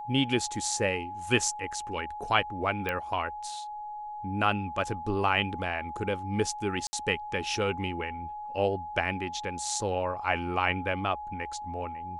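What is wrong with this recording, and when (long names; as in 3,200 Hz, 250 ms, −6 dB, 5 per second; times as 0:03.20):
whistle 840 Hz −36 dBFS
0:02.89: click −17 dBFS
0:06.87–0:06.93: drop-out 60 ms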